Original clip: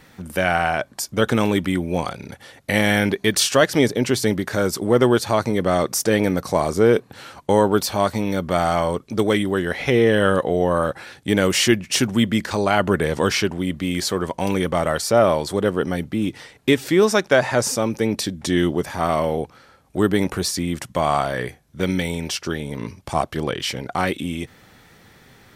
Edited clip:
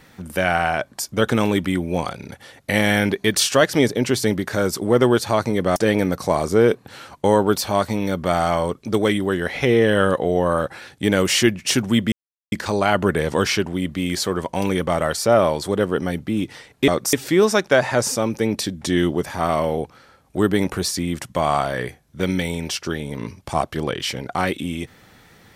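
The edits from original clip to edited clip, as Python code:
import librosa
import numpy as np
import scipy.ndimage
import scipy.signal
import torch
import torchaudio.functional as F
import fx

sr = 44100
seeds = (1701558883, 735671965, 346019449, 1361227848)

y = fx.edit(x, sr, fx.move(start_s=5.76, length_s=0.25, to_s=16.73),
    fx.insert_silence(at_s=12.37, length_s=0.4), tone=tone)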